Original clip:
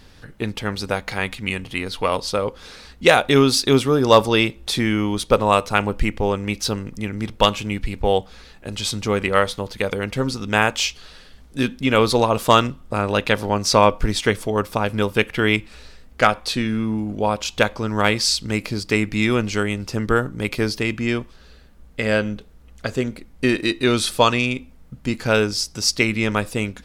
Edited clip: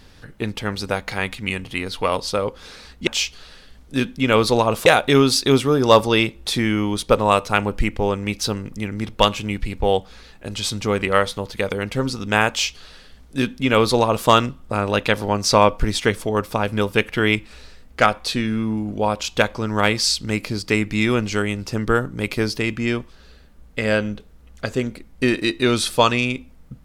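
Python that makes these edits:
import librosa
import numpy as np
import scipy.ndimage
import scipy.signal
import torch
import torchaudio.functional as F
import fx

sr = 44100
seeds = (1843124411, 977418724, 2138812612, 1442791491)

y = fx.edit(x, sr, fx.duplicate(start_s=10.7, length_s=1.79, to_s=3.07), tone=tone)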